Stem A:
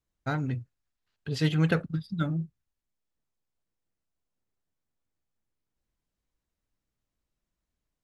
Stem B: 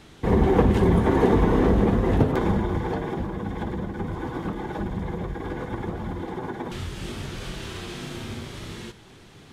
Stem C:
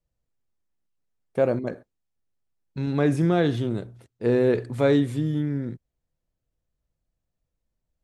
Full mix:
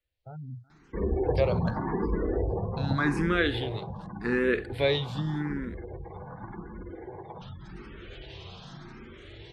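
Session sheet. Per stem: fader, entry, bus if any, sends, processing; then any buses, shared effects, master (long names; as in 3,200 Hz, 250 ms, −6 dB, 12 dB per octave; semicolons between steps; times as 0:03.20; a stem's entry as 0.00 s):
−7.5 dB, 0.00 s, no send, echo send −24 dB, gate on every frequency bin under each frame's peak −15 dB strong; brickwall limiter −24.5 dBFS, peak gain reduction 11.5 dB
−6.0 dB, 0.70 s, no send, no echo send, gate on every frequency bin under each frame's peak −25 dB strong; parametric band 250 Hz −8 dB 0.33 octaves
−4.0 dB, 0.00 s, no send, no echo send, flat-topped bell 2,300 Hz +11.5 dB 2.4 octaves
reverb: not used
echo: repeating echo 375 ms, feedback 55%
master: frequency shifter mixed with the dry sound +0.86 Hz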